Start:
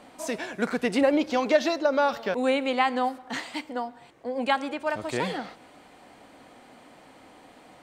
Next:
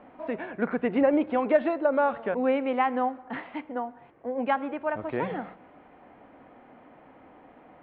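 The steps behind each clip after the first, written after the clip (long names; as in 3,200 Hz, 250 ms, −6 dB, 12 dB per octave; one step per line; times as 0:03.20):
Bessel low-pass filter 1,600 Hz, order 8
hum removal 62.66 Hz, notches 3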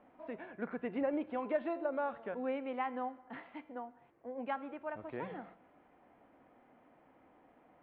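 tuned comb filter 340 Hz, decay 0.83 s, mix 60%
level −4.5 dB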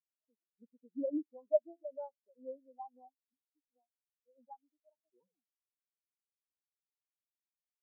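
in parallel at −5 dB: sample-and-hold swept by an LFO 20×, swing 100% 1.3 Hz
on the sum: every bin expanded away from the loudest bin 4 to 1
level +1 dB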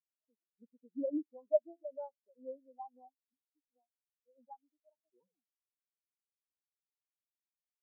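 no processing that can be heard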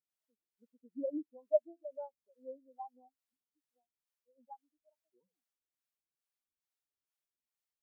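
two-band tremolo in antiphase 2.3 Hz, depth 70%, crossover 460 Hz
level +2 dB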